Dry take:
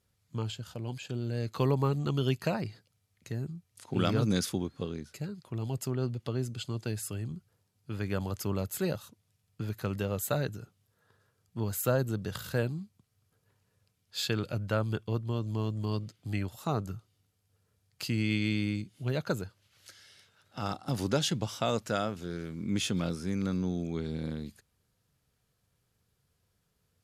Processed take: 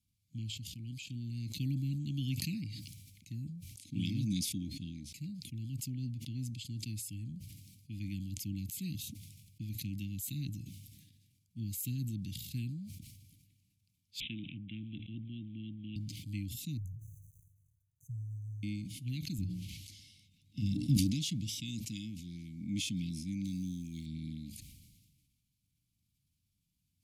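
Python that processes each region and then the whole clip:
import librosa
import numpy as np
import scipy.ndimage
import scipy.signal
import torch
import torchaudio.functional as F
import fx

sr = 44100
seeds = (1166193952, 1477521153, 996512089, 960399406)

y = fx.chain(x, sr, fx.bandpass_edges(low_hz=180.0, high_hz=7900.0),
    fx.resample_bad(factor=6, down='none', up='filtered'), at=(14.2, 15.96))
y = fx.chain(y, sr, fx.law_mismatch(coded='A'),
    fx.brickwall_bandstop(low_hz=160.0, high_hz=5900.0),
    fx.high_shelf_res(hz=4800.0, db=-11.0, q=1.5), at=(16.77, 18.63))
y = fx.chain(y, sr, fx.low_shelf(hz=490.0, db=11.5),
    fx.hum_notches(base_hz=60, count=7), at=(19.38, 20.97))
y = fx.chain(y, sr, fx.law_mismatch(coded='A'),
    fx.peak_eq(hz=9000.0, db=11.0, octaves=1.5), at=(23.44, 24.06))
y = scipy.signal.sosfilt(scipy.signal.cheby1(5, 1.0, [300.0, 2200.0], 'bandstop', fs=sr, output='sos'), y)
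y = fx.peak_eq(y, sr, hz=1700.0, db=-3.0, octaves=2.5)
y = fx.sustainer(y, sr, db_per_s=38.0)
y = y * 10.0 ** (-5.0 / 20.0)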